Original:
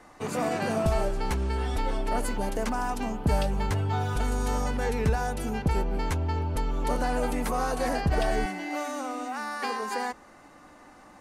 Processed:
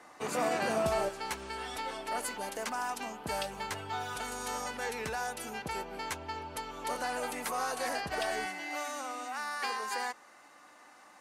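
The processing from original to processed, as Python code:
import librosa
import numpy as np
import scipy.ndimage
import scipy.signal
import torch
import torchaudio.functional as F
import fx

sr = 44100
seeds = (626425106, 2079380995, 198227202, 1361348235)

y = fx.highpass(x, sr, hz=fx.steps((0.0, 480.0), (1.09, 1200.0)), slope=6)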